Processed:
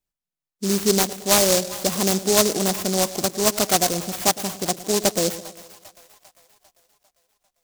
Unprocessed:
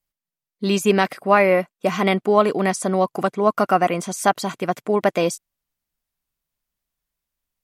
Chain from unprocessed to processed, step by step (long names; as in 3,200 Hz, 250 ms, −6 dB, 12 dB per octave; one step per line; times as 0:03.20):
echo with a time of its own for lows and highs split 770 Hz, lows 110 ms, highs 398 ms, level −14.5 dB
short delay modulated by noise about 5,900 Hz, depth 0.2 ms
level −2 dB